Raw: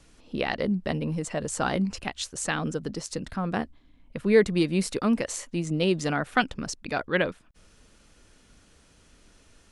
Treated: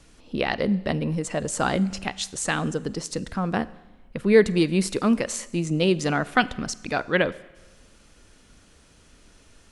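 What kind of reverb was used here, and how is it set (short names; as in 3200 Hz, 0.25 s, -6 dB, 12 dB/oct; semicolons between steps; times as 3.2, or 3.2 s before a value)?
Schroeder reverb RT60 1.1 s, combs from 32 ms, DRR 18 dB; gain +3 dB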